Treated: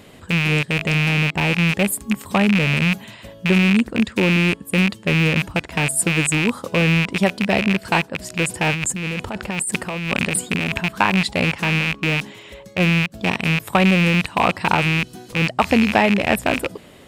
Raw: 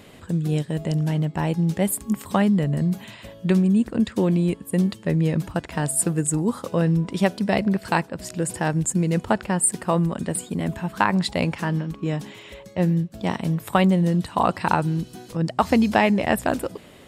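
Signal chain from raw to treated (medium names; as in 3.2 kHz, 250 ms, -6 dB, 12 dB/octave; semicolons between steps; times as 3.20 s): rattle on loud lows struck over -30 dBFS, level -11 dBFS; 8.73–10.81 s: compressor with a negative ratio -25 dBFS, ratio -1; trim +2 dB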